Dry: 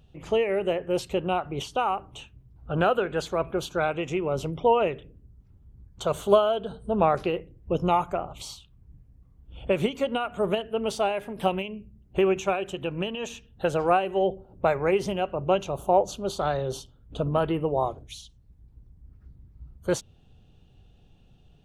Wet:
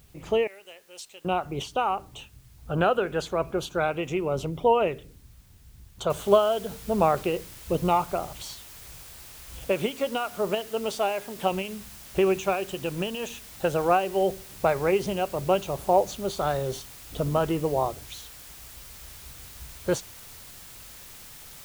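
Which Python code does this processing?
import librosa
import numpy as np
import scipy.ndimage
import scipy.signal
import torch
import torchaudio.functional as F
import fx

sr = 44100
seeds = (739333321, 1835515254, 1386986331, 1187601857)

y = fx.bandpass_q(x, sr, hz=7400.0, q=1.0, at=(0.47, 1.25))
y = fx.noise_floor_step(y, sr, seeds[0], at_s=6.1, before_db=-62, after_db=-46, tilt_db=0.0)
y = fx.low_shelf(y, sr, hz=190.0, db=-8.5, at=(9.64, 11.51))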